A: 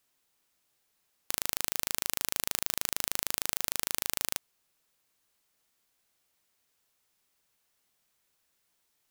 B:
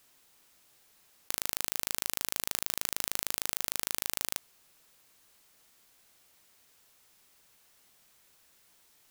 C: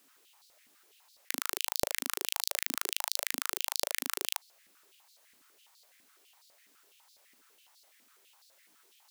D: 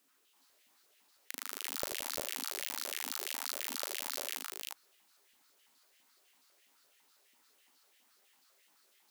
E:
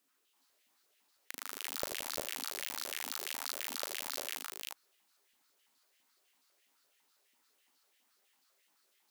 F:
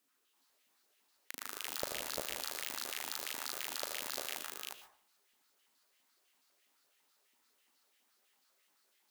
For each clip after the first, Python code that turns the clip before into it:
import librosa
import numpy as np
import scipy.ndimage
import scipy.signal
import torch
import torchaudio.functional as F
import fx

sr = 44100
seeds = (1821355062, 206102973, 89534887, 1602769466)

y1 = fx.over_compress(x, sr, threshold_db=-37.0, ratio=-0.5)
y1 = y1 * librosa.db_to_amplitude(5.0)
y2 = fx.filter_held_highpass(y1, sr, hz=12.0, low_hz=260.0, high_hz=4300.0)
y2 = y2 * librosa.db_to_amplitude(-1.5)
y3 = fx.echo_multitap(y2, sr, ms=(40, 86, 172, 348, 363), db=(-18.5, -9.0, -12.0, -3.5, -4.0))
y3 = y3 * librosa.db_to_amplitude(-8.0)
y4 = fx.leveller(y3, sr, passes=1)
y4 = y4 * librosa.db_to_amplitude(-3.0)
y5 = fx.rev_plate(y4, sr, seeds[0], rt60_s=0.52, hf_ratio=0.4, predelay_ms=100, drr_db=8.0)
y5 = y5 * librosa.db_to_amplitude(-1.0)